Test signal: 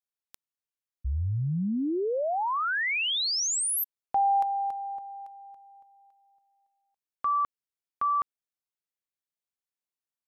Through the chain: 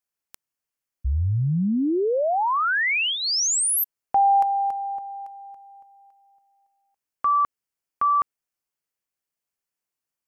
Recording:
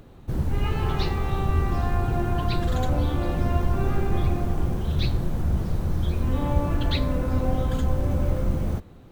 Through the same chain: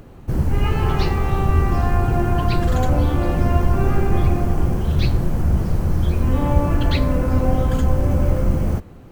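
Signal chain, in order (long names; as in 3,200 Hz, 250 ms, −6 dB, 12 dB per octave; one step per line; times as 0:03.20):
parametric band 3,700 Hz −8 dB 0.3 octaves
level +6 dB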